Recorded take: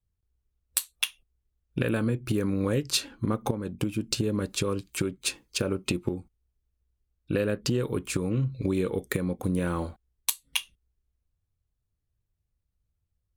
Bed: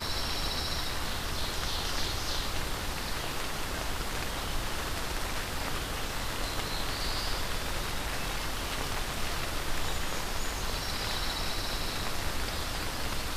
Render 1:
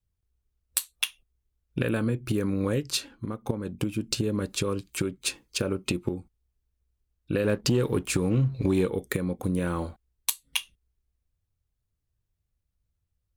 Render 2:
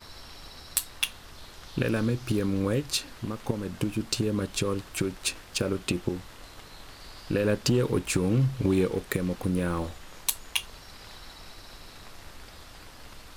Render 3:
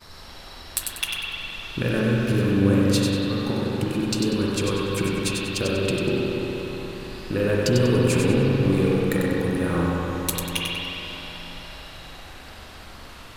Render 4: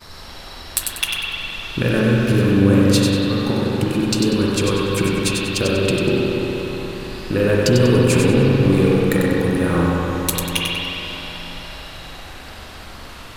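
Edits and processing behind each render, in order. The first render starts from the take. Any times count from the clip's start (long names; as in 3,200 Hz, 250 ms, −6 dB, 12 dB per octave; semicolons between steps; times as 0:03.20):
0:02.68–0:03.49: fade out, to −10 dB; 0:07.44–0:08.86: leveller curve on the samples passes 1
mix in bed −13.5 dB
feedback echo with a high-pass in the loop 96 ms, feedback 35%, high-pass 1,100 Hz, level −4.5 dB; spring reverb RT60 4 s, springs 41/59 ms, chirp 30 ms, DRR −4.5 dB
level +5.5 dB; brickwall limiter −3 dBFS, peak gain reduction 2.5 dB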